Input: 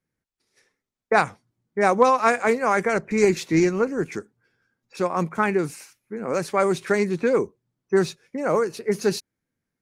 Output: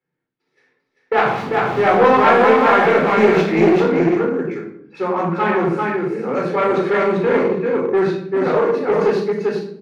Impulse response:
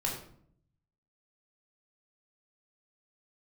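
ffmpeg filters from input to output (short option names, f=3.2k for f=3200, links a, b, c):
-filter_complex "[0:a]asettb=1/sr,asplit=3[a][b][c];[a]atrim=end=1.264[d];[b]atrim=start=1.26:end=3.41,asetpts=PTS-STARTPTS,afade=t=in:d=0.004:c=qsin,afade=t=out:st=2.146:d=0.004:c=qsin,aeval=exprs='val(0)+0.5*0.0631*sgn(val(0))':c=same[e];[c]atrim=start=3.406[f];[d][e]acrossfade=d=0.004:c1=hsin:c2=qsin[g];[g][f]acrossfade=d=0.004:c1=qsin:c2=hsin,aecho=1:1:393:0.668[h];[1:a]atrim=start_sample=2205,asetrate=39690,aresample=44100[i];[h][i]afir=irnorm=-1:irlink=0,aeval=exprs='clip(val(0),-1,0.178)':c=same,acrossover=split=150 3700:gain=0.0708 1 0.0631[j][k][l];[j][k][l]amix=inputs=3:normalize=0"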